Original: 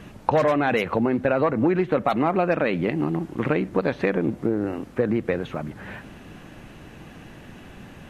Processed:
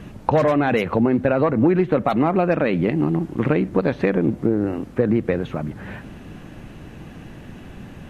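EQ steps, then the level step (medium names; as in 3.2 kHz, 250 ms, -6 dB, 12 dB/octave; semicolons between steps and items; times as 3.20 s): bass shelf 400 Hz +6.5 dB; 0.0 dB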